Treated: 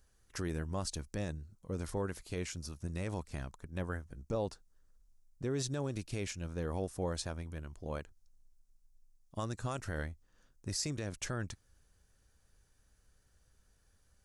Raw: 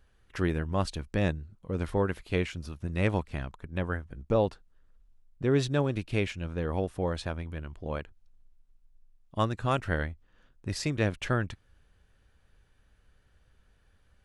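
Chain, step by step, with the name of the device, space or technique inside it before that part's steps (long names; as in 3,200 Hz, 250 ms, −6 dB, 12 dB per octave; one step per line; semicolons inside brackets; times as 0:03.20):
over-bright horn tweeter (high shelf with overshoot 4,300 Hz +10.5 dB, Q 1.5; brickwall limiter −20.5 dBFS, peak gain reduction 9 dB)
level −5.5 dB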